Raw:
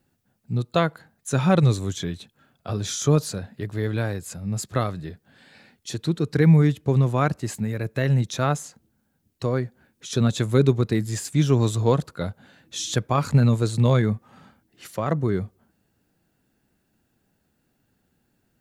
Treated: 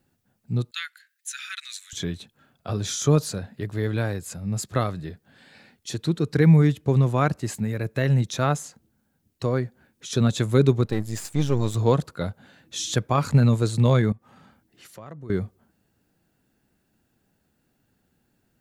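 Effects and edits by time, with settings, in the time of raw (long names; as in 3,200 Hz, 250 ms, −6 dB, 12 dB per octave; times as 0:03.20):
0:00.71–0:01.93: Butterworth high-pass 1,600 Hz 48 dB per octave
0:10.85–0:11.75: gain on one half-wave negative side −12 dB
0:14.12–0:15.30: downward compressor 2 to 1, threshold −50 dBFS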